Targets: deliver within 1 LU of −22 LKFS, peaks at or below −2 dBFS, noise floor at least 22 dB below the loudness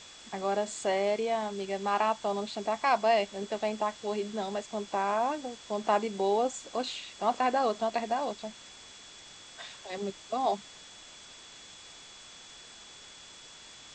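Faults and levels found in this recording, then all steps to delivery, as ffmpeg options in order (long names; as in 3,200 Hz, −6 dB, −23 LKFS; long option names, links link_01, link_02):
interfering tone 3,400 Hz; level of the tone −53 dBFS; background noise floor −51 dBFS; target noise floor −53 dBFS; integrated loudness −31.0 LKFS; sample peak −13.5 dBFS; target loudness −22.0 LKFS
→ -af "bandreject=frequency=3400:width=30"
-af "afftdn=noise_reduction=6:noise_floor=-51"
-af "volume=9dB"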